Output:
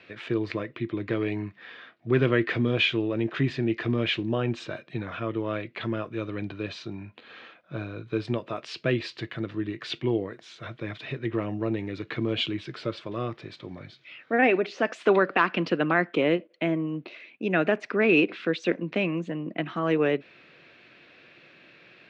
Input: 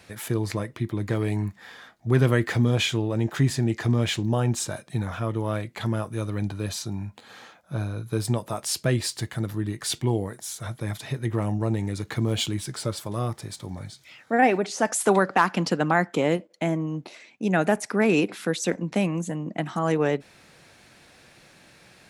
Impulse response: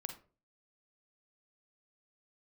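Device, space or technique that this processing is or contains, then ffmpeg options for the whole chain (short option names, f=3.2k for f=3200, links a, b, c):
kitchen radio: -af "highpass=170,equalizer=f=200:t=q:w=4:g=-5,equalizer=f=350:t=q:w=4:g=3,equalizer=f=840:t=q:w=4:g=-10,equalizer=f=2.6k:t=q:w=4:g=6,lowpass=f=3.7k:w=0.5412,lowpass=f=3.7k:w=1.3066"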